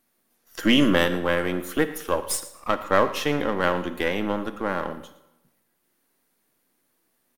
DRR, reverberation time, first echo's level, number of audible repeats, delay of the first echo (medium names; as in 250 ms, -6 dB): 11.0 dB, 0.95 s, -18.5 dB, 1, 114 ms